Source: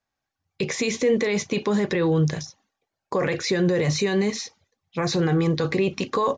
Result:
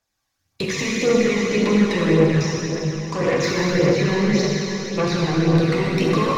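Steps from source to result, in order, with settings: rattling part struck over -27 dBFS, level -29 dBFS; high shelf 3500 Hz +11 dB; treble ducked by the level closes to 780 Hz, closed at -14 dBFS; soft clip -19.5 dBFS, distortion -14 dB; plate-style reverb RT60 4.2 s, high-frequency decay 0.95×, DRR -5 dB; phaser 1.8 Hz, delay 1.1 ms, feedback 36%

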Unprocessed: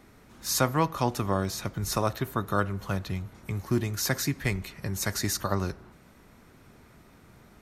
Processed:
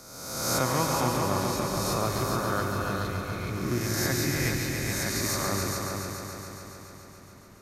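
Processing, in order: spectral swells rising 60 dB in 1.29 s; multi-head echo 0.141 s, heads all three, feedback 62%, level -8 dB; gain -5.5 dB

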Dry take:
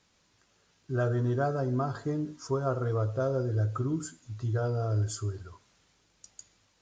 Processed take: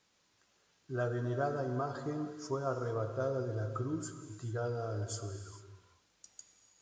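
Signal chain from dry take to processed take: low shelf 150 Hz -9.5 dB; non-linear reverb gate 0.47 s flat, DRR 8 dB; gain -4 dB

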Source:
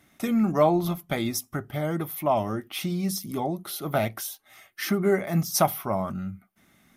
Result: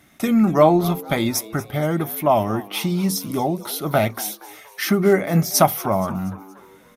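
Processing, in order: frequency-shifting echo 0.236 s, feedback 47%, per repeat +98 Hz, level -18.5 dB; gain +6.5 dB

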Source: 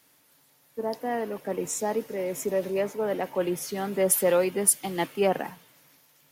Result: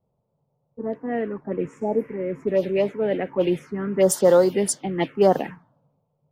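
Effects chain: envelope phaser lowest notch 290 Hz, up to 2500 Hz, full sweep at -19.5 dBFS; low-pass opened by the level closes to 330 Hz, open at -21.5 dBFS; spectral repair 1.84–2.14, 990–8900 Hz both; gain +7.5 dB

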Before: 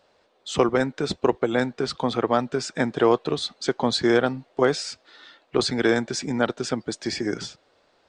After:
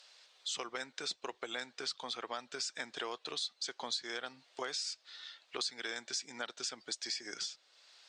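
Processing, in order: band-pass 5700 Hz, Q 0.83; compressor 4:1, threshold -40 dBFS, peak gain reduction 15 dB; mismatched tape noise reduction encoder only; gain +3 dB

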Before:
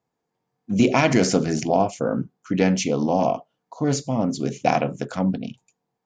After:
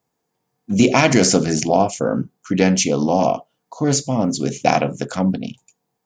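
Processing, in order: high shelf 6000 Hz +11 dB; gain +3.5 dB

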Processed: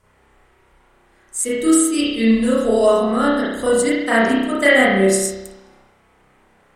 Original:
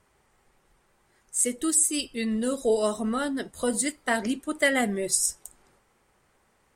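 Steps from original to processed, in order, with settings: spring tank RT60 1 s, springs 31 ms, chirp 40 ms, DRR -9 dB; gain +2 dB

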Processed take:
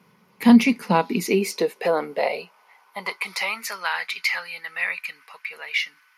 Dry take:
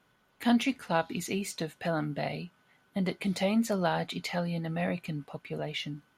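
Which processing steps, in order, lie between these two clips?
high-pass sweep 150 Hz -> 1600 Hz, 0.34–3.79; ripple EQ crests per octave 0.85, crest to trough 9 dB; gain +7.5 dB

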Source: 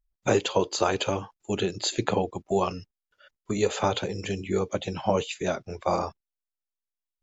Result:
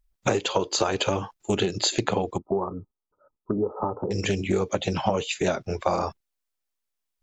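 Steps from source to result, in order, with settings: compressor 10:1, threshold -27 dBFS, peak gain reduction 10.5 dB; 2.38–4.11 rippled Chebyshev low-pass 1300 Hz, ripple 6 dB; Doppler distortion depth 0.17 ms; gain +7.5 dB

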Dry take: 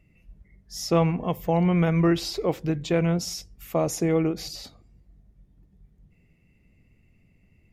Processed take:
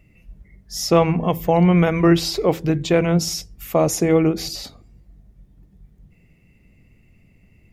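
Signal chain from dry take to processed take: high shelf 12000 Hz +3.5 dB; de-hum 82.21 Hz, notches 5; gain +7 dB

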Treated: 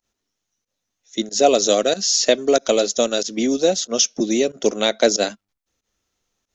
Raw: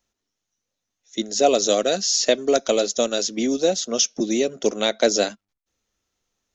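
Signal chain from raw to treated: pump 93 bpm, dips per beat 1, -20 dB, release 86 ms; gain +2.5 dB

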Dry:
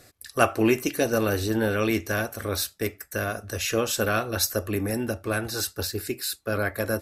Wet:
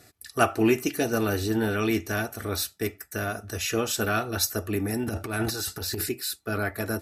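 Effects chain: 5.03–6.09 transient shaper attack -10 dB, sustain +11 dB; notch comb 540 Hz

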